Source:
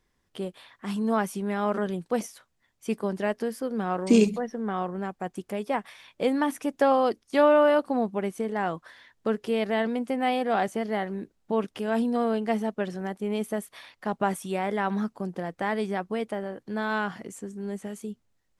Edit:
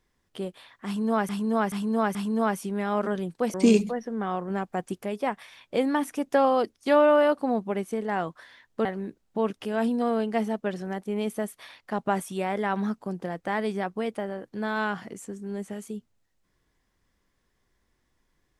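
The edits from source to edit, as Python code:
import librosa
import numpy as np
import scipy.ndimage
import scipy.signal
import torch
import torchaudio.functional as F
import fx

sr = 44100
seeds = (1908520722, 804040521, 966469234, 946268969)

y = fx.edit(x, sr, fx.repeat(start_s=0.86, length_s=0.43, count=4),
    fx.cut(start_s=2.25, length_s=1.76),
    fx.clip_gain(start_s=4.97, length_s=0.48, db=3.0),
    fx.cut(start_s=9.32, length_s=1.67), tone=tone)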